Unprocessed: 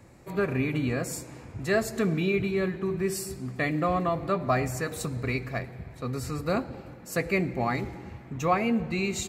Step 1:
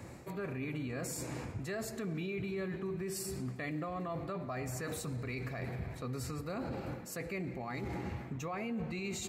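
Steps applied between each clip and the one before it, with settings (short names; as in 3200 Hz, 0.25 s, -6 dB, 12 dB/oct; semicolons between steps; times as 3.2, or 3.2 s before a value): reverse; compressor 16:1, threshold -35 dBFS, peak gain reduction 17 dB; reverse; limiter -36 dBFS, peak gain reduction 10.5 dB; HPF 56 Hz; gain +5 dB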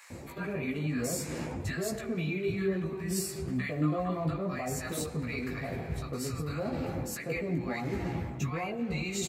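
chorus voices 6, 0.56 Hz, delay 16 ms, depth 4.7 ms; bands offset in time highs, lows 0.1 s, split 1100 Hz; gain +9 dB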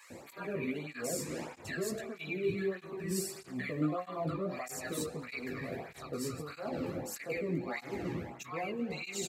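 tape flanging out of phase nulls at 1.6 Hz, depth 1.5 ms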